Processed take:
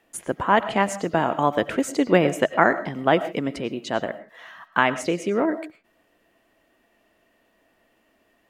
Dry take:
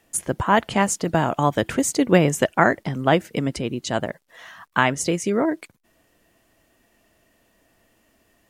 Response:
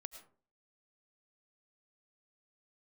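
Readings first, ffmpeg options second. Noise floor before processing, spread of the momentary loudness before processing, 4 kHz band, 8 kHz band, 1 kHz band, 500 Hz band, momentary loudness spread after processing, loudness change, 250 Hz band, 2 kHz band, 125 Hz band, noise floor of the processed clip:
−64 dBFS, 9 LU, −2.5 dB, −9.5 dB, 0.0 dB, 0.0 dB, 11 LU, −1.5 dB, −2.5 dB, −0.5 dB, −6.5 dB, −66 dBFS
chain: -filter_complex "[0:a]asplit=2[link_01][link_02];[link_02]highpass=190[link_03];[1:a]atrim=start_sample=2205,afade=type=out:start_time=0.23:duration=0.01,atrim=end_sample=10584,lowpass=4100[link_04];[link_03][link_04]afir=irnorm=-1:irlink=0,volume=8.5dB[link_05];[link_01][link_05]amix=inputs=2:normalize=0,volume=-8dB"

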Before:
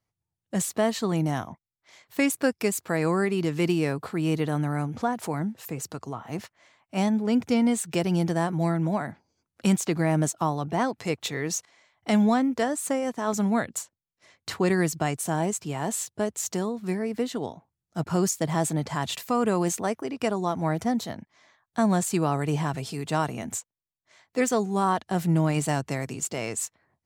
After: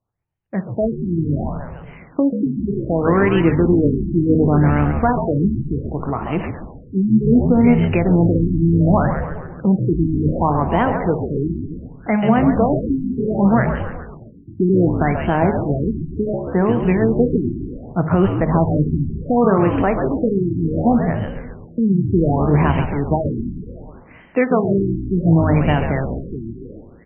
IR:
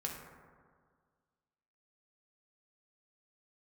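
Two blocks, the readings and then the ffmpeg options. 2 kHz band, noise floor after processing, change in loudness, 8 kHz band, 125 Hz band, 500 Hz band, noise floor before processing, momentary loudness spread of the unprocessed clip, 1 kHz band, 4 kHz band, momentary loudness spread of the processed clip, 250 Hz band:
+5.0 dB, −42 dBFS, +9.0 dB, below −40 dB, +11.0 dB, +8.5 dB, below −85 dBFS, 11 LU, +6.5 dB, can't be measured, 13 LU, +9.5 dB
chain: -filter_complex "[0:a]bandreject=frequency=52.24:width_type=h:width=4,bandreject=frequency=104.48:width_type=h:width=4,bandreject=frequency=156.72:width_type=h:width=4,bandreject=frequency=208.96:width_type=h:width=4,bandreject=frequency=261.2:width_type=h:width=4,bandreject=frequency=313.44:width_type=h:width=4,bandreject=frequency=365.68:width_type=h:width=4,bandreject=frequency=417.92:width_type=h:width=4,bandreject=frequency=470.16:width_type=h:width=4,bandreject=frequency=522.4:width_type=h:width=4,bandreject=frequency=574.64:width_type=h:width=4,bandreject=frequency=626.88:width_type=h:width=4,bandreject=frequency=679.12:width_type=h:width=4,bandreject=frequency=731.36:width_type=h:width=4,bandreject=frequency=783.6:width_type=h:width=4,bandreject=frequency=835.84:width_type=h:width=4,bandreject=frequency=888.08:width_type=h:width=4,bandreject=frequency=940.32:width_type=h:width=4,bandreject=frequency=992.56:width_type=h:width=4,bandreject=frequency=1044.8:width_type=h:width=4,bandreject=frequency=1097.04:width_type=h:width=4,bandreject=frequency=1149.28:width_type=h:width=4,bandreject=frequency=1201.52:width_type=h:width=4,bandreject=frequency=1253.76:width_type=h:width=4,bandreject=frequency=1306:width_type=h:width=4,bandreject=frequency=1358.24:width_type=h:width=4,bandreject=frequency=1410.48:width_type=h:width=4,bandreject=frequency=1462.72:width_type=h:width=4,dynaudnorm=framelen=400:gausssize=9:maxgain=8dB,alimiter=limit=-9.5dB:level=0:latency=1:release=309,asplit=8[link_01][link_02][link_03][link_04][link_05][link_06][link_07][link_08];[link_02]adelay=136,afreqshift=-69,volume=-7dB[link_09];[link_03]adelay=272,afreqshift=-138,volume=-12.2dB[link_10];[link_04]adelay=408,afreqshift=-207,volume=-17.4dB[link_11];[link_05]adelay=544,afreqshift=-276,volume=-22.6dB[link_12];[link_06]adelay=680,afreqshift=-345,volume=-27.8dB[link_13];[link_07]adelay=816,afreqshift=-414,volume=-33dB[link_14];[link_08]adelay=952,afreqshift=-483,volume=-38.2dB[link_15];[link_01][link_09][link_10][link_11][link_12][link_13][link_14][link_15]amix=inputs=8:normalize=0,asplit=2[link_16][link_17];[1:a]atrim=start_sample=2205,adelay=54[link_18];[link_17][link_18]afir=irnorm=-1:irlink=0,volume=-16dB[link_19];[link_16][link_19]amix=inputs=2:normalize=0,afftfilt=real='re*lt(b*sr/1024,370*pow(3200/370,0.5+0.5*sin(2*PI*0.67*pts/sr)))':imag='im*lt(b*sr/1024,370*pow(3200/370,0.5+0.5*sin(2*PI*0.67*pts/sr)))':win_size=1024:overlap=0.75,volume=5dB"

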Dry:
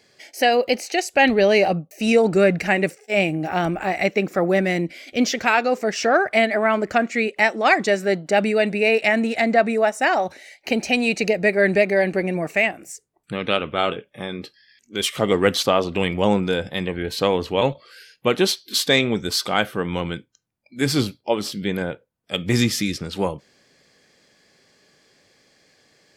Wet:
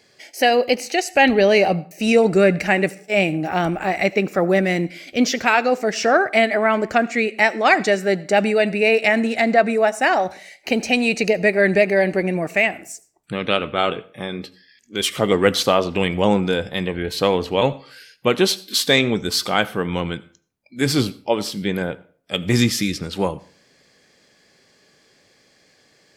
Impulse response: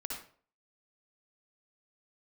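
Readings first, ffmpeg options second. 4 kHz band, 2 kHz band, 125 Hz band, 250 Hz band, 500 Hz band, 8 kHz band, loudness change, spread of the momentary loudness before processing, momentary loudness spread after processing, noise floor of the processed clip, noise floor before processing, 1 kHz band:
+1.5 dB, +1.5 dB, +2.0 dB, +1.5 dB, +1.5 dB, +1.5 dB, +1.5 dB, 10 LU, 10 LU, −58 dBFS, −64 dBFS, +1.5 dB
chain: -filter_complex "[0:a]asplit=2[link_01][link_02];[1:a]atrim=start_sample=2205,highshelf=frequency=9900:gain=8.5,adelay=16[link_03];[link_02][link_03]afir=irnorm=-1:irlink=0,volume=-18.5dB[link_04];[link_01][link_04]amix=inputs=2:normalize=0,volume=1.5dB"

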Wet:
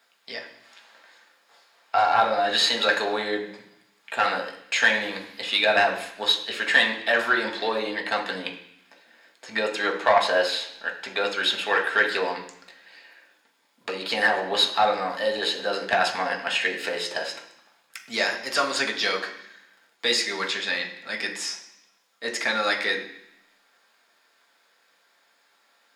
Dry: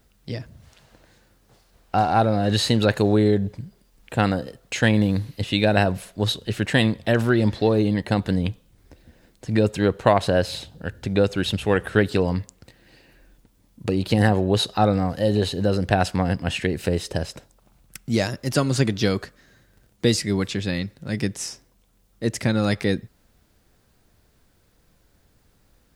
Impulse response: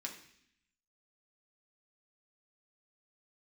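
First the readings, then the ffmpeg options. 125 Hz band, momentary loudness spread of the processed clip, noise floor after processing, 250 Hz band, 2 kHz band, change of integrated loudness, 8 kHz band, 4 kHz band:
−27.5 dB, 13 LU, −65 dBFS, −15.0 dB, +6.0 dB, −1.5 dB, −1.5 dB, +4.5 dB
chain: -filter_complex "[0:a]highpass=610,asplit=2[link_01][link_02];[link_02]highpass=frequency=720:poles=1,volume=14dB,asoftclip=type=tanh:threshold=-3dB[link_03];[link_01][link_03]amix=inputs=2:normalize=0,lowpass=frequency=3000:poles=1,volume=-6dB[link_04];[1:a]atrim=start_sample=2205,asetrate=41454,aresample=44100[link_05];[link_04][link_05]afir=irnorm=-1:irlink=0"

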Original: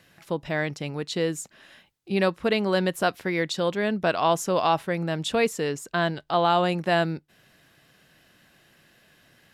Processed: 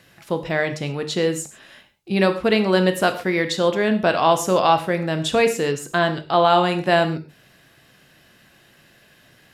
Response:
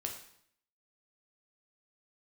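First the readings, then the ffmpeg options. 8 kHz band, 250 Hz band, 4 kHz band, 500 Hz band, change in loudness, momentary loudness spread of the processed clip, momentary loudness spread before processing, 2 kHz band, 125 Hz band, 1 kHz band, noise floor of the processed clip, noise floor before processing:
+5.5 dB, +5.5 dB, +5.0 dB, +5.5 dB, +5.5 dB, 8 LU, 7 LU, +5.0 dB, +4.5 dB, +5.5 dB, −55 dBFS, −60 dBFS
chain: -filter_complex "[0:a]asplit=2[link_01][link_02];[1:a]atrim=start_sample=2205,atrim=end_sample=6174,asetrate=41013,aresample=44100[link_03];[link_02][link_03]afir=irnorm=-1:irlink=0,volume=2dB[link_04];[link_01][link_04]amix=inputs=2:normalize=0,volume=-1.5dB"

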